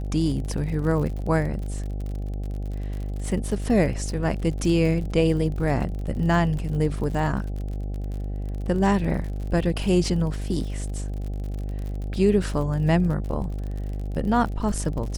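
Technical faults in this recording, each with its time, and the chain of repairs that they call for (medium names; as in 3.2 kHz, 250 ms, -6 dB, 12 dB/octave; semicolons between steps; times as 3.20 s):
buzz 50 Hz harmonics 16 -29 dBFS
crackle 49 per s -32 dBFS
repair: de-click; de-hum 50 Hz, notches 16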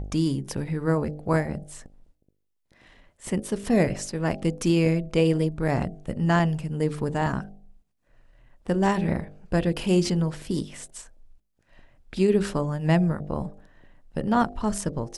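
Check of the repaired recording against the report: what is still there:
nothing left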